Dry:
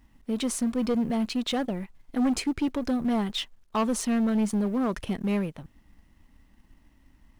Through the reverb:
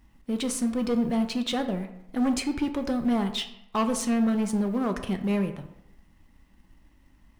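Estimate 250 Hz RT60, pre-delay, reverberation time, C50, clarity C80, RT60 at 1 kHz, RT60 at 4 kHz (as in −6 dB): 0.80 s, 3 ms, 0.80 s, 10.5 dB, 13.0 dB, 0.85 s, 0.50 s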